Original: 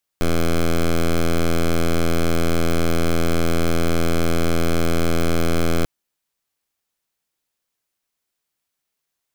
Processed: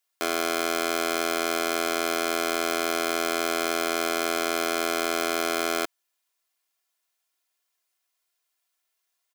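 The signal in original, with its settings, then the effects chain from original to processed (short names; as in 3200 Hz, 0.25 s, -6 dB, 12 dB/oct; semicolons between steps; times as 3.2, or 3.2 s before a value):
pulse 83.6 Hz, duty 9% -16.5 dBFS 5.64 s
HPF 570 Hz 12 dB/oct; comb 2.9 ms, depth 61%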